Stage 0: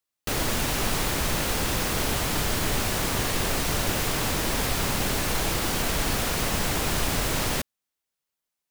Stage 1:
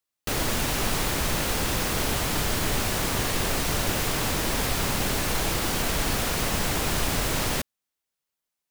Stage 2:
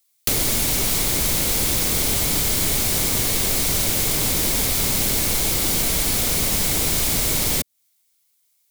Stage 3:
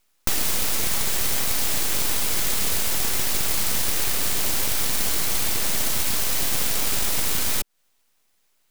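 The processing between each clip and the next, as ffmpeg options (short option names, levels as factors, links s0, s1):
-af anull
-filter_complex "[0:a]equalizer=f=2200:t=o:w=0.27:g=11,acrossover=split=570|1200[s0][s1][s2];[s0]acompressor=threshold=0.0398:ratio=4[s3];[s1]acompressor=threshold=0.00562:ratio=4[s4];[s2]acompressor=threshold=0.0141:ratio=4[s5];[s3][s4][s5]amix=inputs=3:normalize=0,acrossover=split=260|1200[s6][s7][s8];[s8]aexciter=amount=4.1:drive=4.4:freq=3200[s9];[s6][s7][s9]amix=inputs=3:normalize=0,volume=1.78"
-af "aeval=exprs='abs(val(0))':c=same"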